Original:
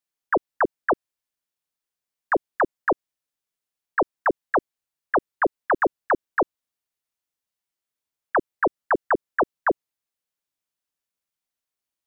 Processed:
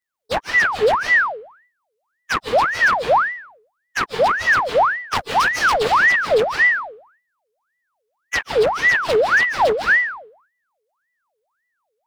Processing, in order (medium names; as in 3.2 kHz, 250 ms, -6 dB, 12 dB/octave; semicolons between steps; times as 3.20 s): frequency axis rescaled in octaves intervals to 116%; band-stop 890 Hz, Q 12; full-wave rectifier; 5.15–5.74 s: treble shelf 2.2 kHz +10 dB; reverberation RT60 0.60 s, pre-delay 115 ms, DRR 6.5 dB; loudness maximiser +20.5 dB; ring modulator with a swept carrier 1.2 kHz, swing 65%, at 1.8 Hz; trim -6.5 dB